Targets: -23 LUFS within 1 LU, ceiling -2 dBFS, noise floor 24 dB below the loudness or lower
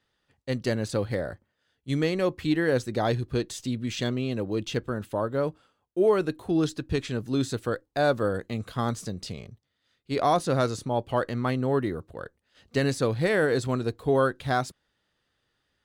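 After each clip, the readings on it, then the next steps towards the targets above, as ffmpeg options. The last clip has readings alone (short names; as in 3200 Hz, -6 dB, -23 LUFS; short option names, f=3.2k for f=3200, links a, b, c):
loudness -27.5 LUFS; peak -12.0 dBFS; loudness target -23.0 LUFS
-> -af "volume=4.5dB"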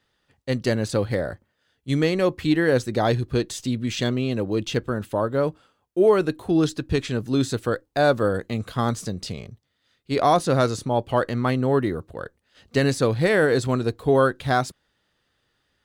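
loudness -23.0 LUFS; peak -7.5 dBFS; noise floor -72 dBFS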